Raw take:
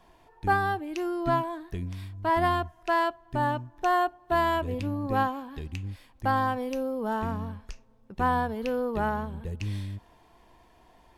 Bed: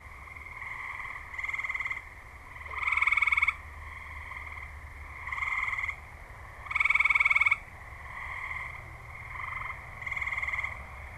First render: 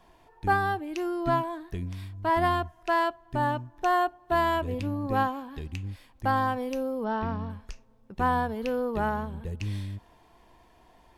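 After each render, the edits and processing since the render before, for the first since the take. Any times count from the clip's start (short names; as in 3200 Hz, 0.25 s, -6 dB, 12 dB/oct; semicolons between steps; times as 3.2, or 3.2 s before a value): 7.04–7.5 brick-wall FIR low-pass 5700 Hz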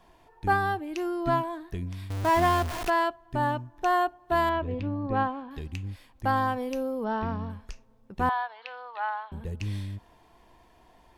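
2.1–2.9 zero-crossing step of -28 dBFS; 4.49–5.51 air absorption 220 m; 8.29–9.32 elliptic band-pass 780–4100 Hz, stop band 70 dB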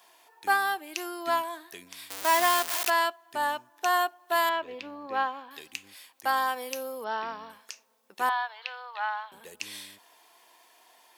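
HPF 350 Hz 12 dB/oct; tilt +4 dB/oct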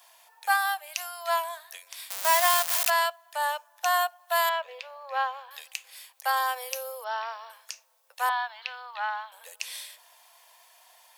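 steep high-pass 510 Hz 72 dB/oct; high shelf 4700 Hz +5.5 dB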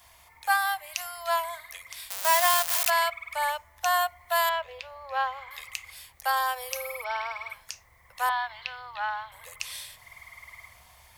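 add bed -15.5 dB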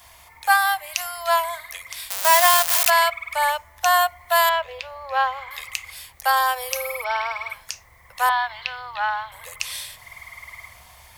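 gain +7 dB; limiter -2 dBFS, peak gain reduction 1 dB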